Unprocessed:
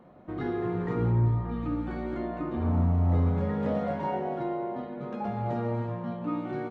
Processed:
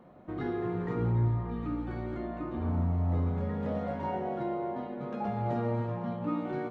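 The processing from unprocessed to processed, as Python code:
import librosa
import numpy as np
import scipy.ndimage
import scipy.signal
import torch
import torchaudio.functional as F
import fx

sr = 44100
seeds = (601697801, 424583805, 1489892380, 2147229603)

p1 = fx.rider(x, sr, range_db=5, speed_s=2.0)
p2 = p1 + fx.echo_single(p1, sr, ms=766, db=-14.0, dry=0)
y = p2 * 10.0 ** (-4.0 / 20.0)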